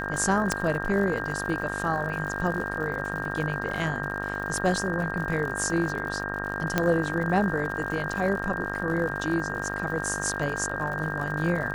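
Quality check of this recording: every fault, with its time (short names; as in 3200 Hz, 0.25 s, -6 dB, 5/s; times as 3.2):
buzz 50 Hz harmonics 37 -34 dBFS
crackle 100/s -34 dBFS
tone 1600 Hz -33 dBFS
0.52 pop -10 dBFS
6.78 pop -8 dBFS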